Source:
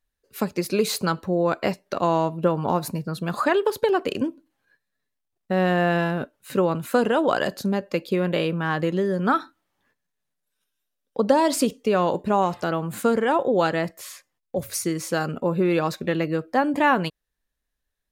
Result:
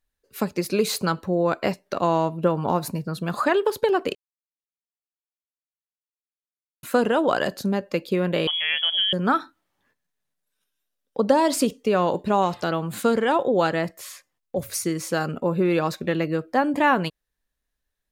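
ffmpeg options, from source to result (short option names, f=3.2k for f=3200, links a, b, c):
-filter_complex "[0:a]asettb=1/sr,asplit=3[a][b][c];[a]atrim=end=8.474[d];[b]atrim=start=8.47:end=9.13,asetpts=PTS-STARTPTS,afade=t=in:d=0.004:c=qsin,afade=t=out:st=0.656:d=0.004:c=qsin,lowpass=f=3k:t=q:w=0.5098,lowpass=f=3k:t=q:w=0.6013,lowpass=f=3k:t=q:w=0.9,lowpass=f=3k:t=q:w=2.563,afreqshift=-3500[e];[c]atrim=start=9.126[f];[d][e]acrossfade=d=0.004:c1=hsin:c2=qsin[g];[g][f]acrossfade=d=0.004:c1=qsin:c2=hsin,asettb=1/sr,asplit=3[h][i][j];[h]atrim=end=12.174[k];[i]atrim=start=12.17:end=13.49,asetpts=PTS-STARTPTS,afade=t=in:d=0.004:c=qsin,afade=t=out:st=1.316:d=0.004:c=qsin,equalizer=f=3.9k:w=1.5:g=5.5[l];[j]atrim=start=13.486[m];[k][l]acrossfade=d=0.004:c1=hsin:c2=qsin[n];[n][m]acrossfade=d=0.004:c1=qsin:c2=hsin,asplit=3[o][p][q];[o]atrim=end=4.15,asetpts=PTS-STARTPTS,afade=t=out:st=4.146:d=0.004:c=hsin[r];[p]atrim=start=4.15:end=6.83,asetpts=PTS-STARTPTS,volume=0[s];[q]atrim=start=6.83,asetpts=PTS-STARTPTS,afade=t=in:d=0.004:c=hsin[t];[r][s][t]concat=n=3:v=0:a=1"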